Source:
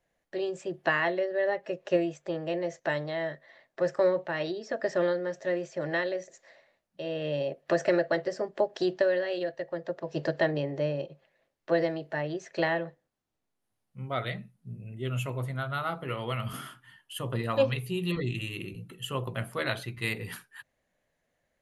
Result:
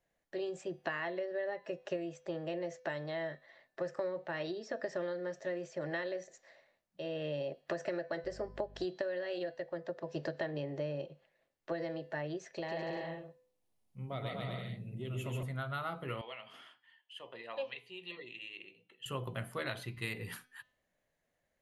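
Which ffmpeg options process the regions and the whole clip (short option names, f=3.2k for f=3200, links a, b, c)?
-filter_complex "[0:a]asettb=1/sr,asplit=3[a][b][c];[a]atrim=end=8.244[d];[b]atrim=start=8.24:end=8.85,asetpts=PTS-STARTPTS,afade=t=in:d=0.004:c=qsin,afade=t=out:st=0.606:d=0.004:c=qsin,equalizer=f=5.9k:t=o:w=0.24:g=-3,aeval=exprs='val(0)+0.00501*(sin(2*PI*50*n/s)+sin(2*PI*2*50*n/s)/2+sin(2*PI*3*50*n/s)/3+sin(2*PI*4*50*n/s)/4+sin(2*PI*5*50*n/s)/5)':c=same[e];[c]atrim=start=8.846[f];[d][e]acrossfade=d=0.004:c1=hsin:c2=qsin[g];[g][f]acrossfade=d=0.004:c1=qsin:c2=hsin,asettb=1/sr,asplit=3[h][i][j];[h]atrim=end=12.524[k];[i]atrim=start=12.52:end=15.43,asetpts=PTS-STARTPTS,afade=t=in:d=0.004:c=qsin,afade=t=out:st=2.906:d=0.004:c=qsin,equalizer=f=1.5k:w=2.5:g=-9,acompressor=threshold=-32dB:ratio=2.5:attack=3.2:release=140:knee=1:detection=peak,aecho=1:1:140|245|323.8|382.8|427.1:0.794|0.631|0.501|0.398|0.316,atrim=end_sample=128331[l];[j]atrim=start=15.426[m];[k][l]acrossfade=d=0.004:c1=hsin:c2=qsin[n];[n][m]acrossfade=d=0.004:c1=qsin:c2=hsin,asettb=1/sr,asplit=3[o][p][q];[o]atrim=end=16.214[r];[p]atrim=start=16.21:end=19.06,asetpts=PTS-STARTPTS,afade=t=in:d=0.004:c=qsin,afade=t=out:st=2.846:d=0.004:c=qsin,highpass=750,lowpass=3.1k,equalizer=f=1.3k:t=o:w=0.71:g=-12.5[s];[q]atrim=start=19.056[t];[r][s]acrossfade=d=0.004:c1=hsin:c2=qsin[u];[u][t]acrossfade=d=0.004:c1=qsin:c2=hsin,bandreject=f=252.2:t=h:w=4,bandreject=f=504.4:t=h:w=4,bandreject=f=756.6:t=h:w=4,bandreject=f=1.0088k:t=h:w=4,bandreject=f=1.261k:t=h:w=4,bandreject=f=1.5132k:t=h:w=4,bandreject=f=1.7654k:t=h:w=4,bandreject=f=2.0176k:t=h:w=4,bandreject=f=2.2698k:t=h:w=4,bandreject=f=2.522k:t=h:w=4,bandreject=f=2.7742k:t=h:w=4,bandreject=f=3.0264k:t=h:w=4,bandreject=f=3.2786k:t=h:w=4,bandreject=f=3.5308k:t=h:w=4,bandreject=f=3.783k:t=h:w=4,bandreject=f=4.0352k:t=h:w=4,bandreject=f=4.2874k:t=h:w=4,bandreject=f=4.5396k:t=h:w=4,bandreject=f=4.7918k:t=h:w=4,bandreject=f=5.044k:t=h:w=4,bandreject=f=5.2962k:t=h:w=4,bandreject=f=5.5484k:t=h:w=4,bandreject=f=5.8006k:t=h:w=4,bandreject=f=6.0528k:t=h:w=4,acompressor=threshold=-29dB:ratio=6,volume=-4.5dB"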